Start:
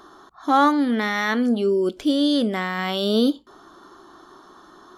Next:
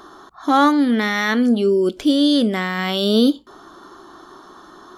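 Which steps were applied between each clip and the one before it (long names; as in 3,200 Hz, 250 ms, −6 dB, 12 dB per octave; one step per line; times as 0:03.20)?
dynamic equaliser 880 Hz, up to −4 dB, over −31 dBFS, Q 0.75
level +5 dB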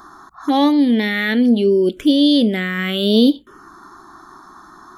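phaser swept by the level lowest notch 480 Hz, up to 1,400 Hz, full sweep at −13 dBFS
level +3 dB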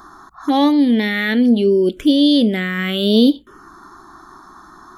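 low-shelf EQ 76 Hz +6.5 dB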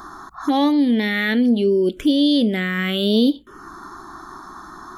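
downward compressor 1.5 to 1, threshold −31 dBFS, peak gain reduction 8.5 dB
level +4 dB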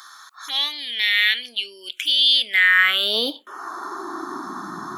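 high-pass filter sweep 2,700 Hz → 140 Hz, 0:02.29–0:04.95
level +4.5 dB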